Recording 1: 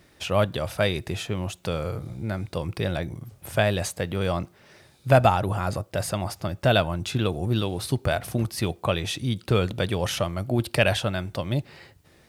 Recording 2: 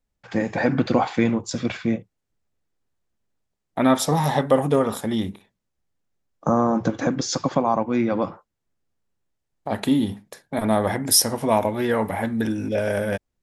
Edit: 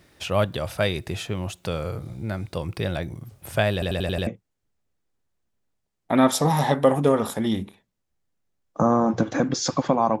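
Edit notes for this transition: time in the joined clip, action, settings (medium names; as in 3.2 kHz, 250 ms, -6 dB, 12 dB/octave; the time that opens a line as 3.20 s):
recording 1
3.73 s: stutter in place 0.09 s, 6 plays
4.27 s: go over to recording 2 from 1.94 s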